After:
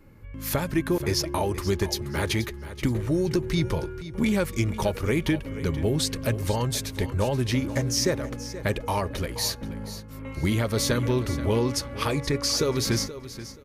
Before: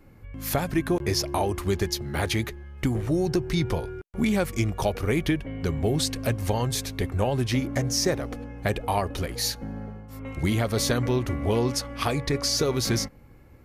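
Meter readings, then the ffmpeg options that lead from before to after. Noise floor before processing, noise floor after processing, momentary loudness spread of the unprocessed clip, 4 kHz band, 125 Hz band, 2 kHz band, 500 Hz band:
-51 dBFS, -40 dBFS, 7 LU, 0.0 dB, 0.0 dB, 0.0 dB, 0.0 dB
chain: -filter_complex "[0:a]asuperstop=centerf=730:order=4:qfactor=6.9,asplit=2[a][b];[b]aecho=0:1:479|958|1437:0.2|0.0479|0.0115[c];[a][c]amix=inputs=2:normalize=0"

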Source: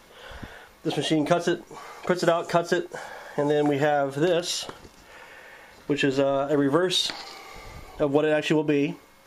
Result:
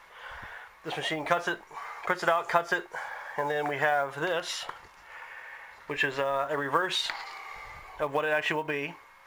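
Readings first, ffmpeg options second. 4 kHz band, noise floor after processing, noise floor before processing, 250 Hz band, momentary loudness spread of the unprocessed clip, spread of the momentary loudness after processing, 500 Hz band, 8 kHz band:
-5.5 dB, -55 dBFS, -53 dBFS, -14.5 dB, 19 LU, 17 LU, -7.5 dB, -8.0 dB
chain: -af "equalizer=f=250:t=o:w=1:g=-9,equalizer=f=1k:t=o:w=1:g=11,equalizer=f=2k:t=o:w=1:g=11,acrusher=bits=8:mode=log:mix=0:aa=0.000001,volume=-9dB"

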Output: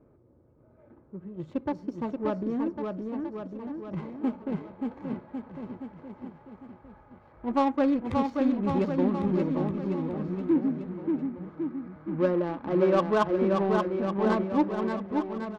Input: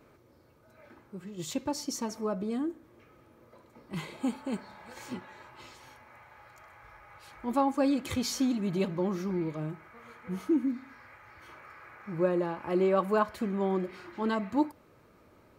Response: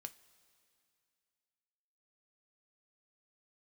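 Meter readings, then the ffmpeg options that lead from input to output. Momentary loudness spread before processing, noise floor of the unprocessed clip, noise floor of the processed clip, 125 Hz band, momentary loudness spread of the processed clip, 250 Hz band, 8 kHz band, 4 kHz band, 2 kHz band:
22 LU, -61 dBFS, -59 dBFS, +4.5 dB, 16 LU, +4.5 dB, under -15 dB, n/a, +2.0 dB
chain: -af "adynamicsmooth=sensitivity=2.5:basefreq=630,aecho=1:1:580|1102|1572|1995|2375:0.631|0.398|0.251|0.158|0.1,volume=2.5dB"

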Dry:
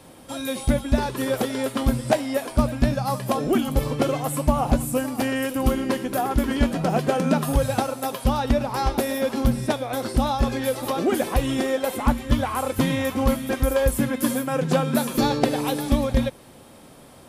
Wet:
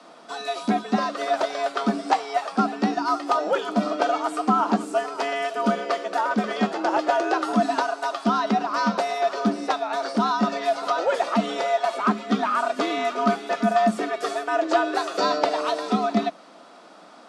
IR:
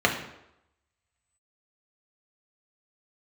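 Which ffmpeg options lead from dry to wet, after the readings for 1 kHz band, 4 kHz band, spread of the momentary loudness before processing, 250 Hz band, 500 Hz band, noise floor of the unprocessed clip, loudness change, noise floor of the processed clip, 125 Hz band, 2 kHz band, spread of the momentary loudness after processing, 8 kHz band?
+5.0 dB, 0.0 dB, 4 LU, -2.5 dB, -0.5 dB, -47 dBFS, -0.5 dB, -48 dBFS, under -10 dB, +2.5 dB, 4 LU, -8.0 dB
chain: -af "afreqshift=160,acontrast=30,highpass=100,equalizer=f=140:t=q:w=4:g=9,equalizer=f=410:t=q:w=4:g=-10,equalizer=f=630:t=q:w=4:g=6,equalizer=f=1.3k:t=q:w=4:g=9,equalizer=f=4.6k:t=q:w=4:g=4,lowpass=f=7k:w=0.5412,lowpass=f=7k:w=1.3066,volume=-6.5dB"

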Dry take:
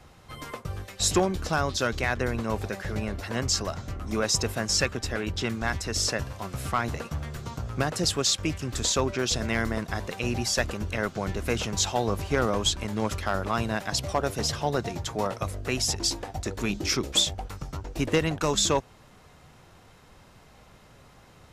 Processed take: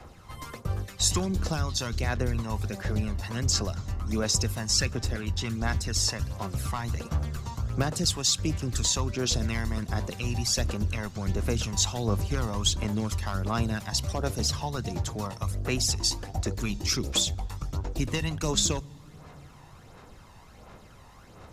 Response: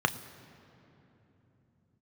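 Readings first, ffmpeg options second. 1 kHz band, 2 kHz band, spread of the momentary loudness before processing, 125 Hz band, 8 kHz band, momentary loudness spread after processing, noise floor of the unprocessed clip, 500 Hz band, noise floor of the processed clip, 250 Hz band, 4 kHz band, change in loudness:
-5.5 dB, -5.5 dB, 11 LU, +3.0 dB, +0.5 dB, 8 LU, -54 dBFS, -6.0 dB, -51 dBFS, -1.5 dB, -1.0 dB, -1.0 dB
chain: -filter_complex "[0:a]acrossover=split=210|3000[a][b][c];[b]acompressor=threshold=-50dB:ratio=1.5[d];[a][d][c]amix=inputs=3:normalize=0,aphaser=in_gain=1:out_gain=1:delay=1.1:decay=0.46:speed=1.4:type=sinusoidal,asplit=2[e][f];[1:a]atrim=start_sample=2205,asetrate=48510,aresample=44100[g];[f][g]afir=irnorm=-1:irlink=0,volume=-23dB[h];[e][h]amix=inputs=2:normalize=0"

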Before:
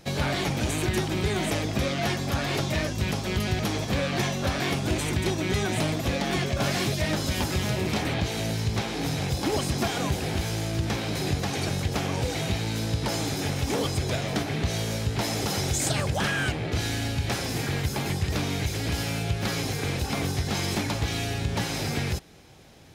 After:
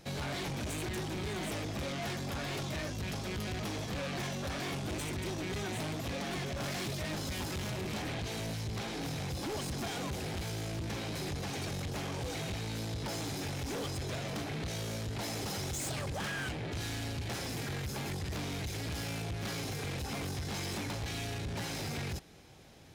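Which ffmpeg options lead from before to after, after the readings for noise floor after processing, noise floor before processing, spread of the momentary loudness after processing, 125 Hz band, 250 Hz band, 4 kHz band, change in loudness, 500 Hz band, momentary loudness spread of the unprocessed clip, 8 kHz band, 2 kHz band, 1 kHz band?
-39 dBFS, -32 dBFS, 1 LU, -10.5 dB, -10.0 dB, -9.5 dB, -10.0 dB, -10.0 dB, 3 LU, -9.0 dB, -9.5 dB, -9.5 dB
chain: -af "asoftclip=type=tanh:threshold=-29.5dB,volume=-4.5dB"

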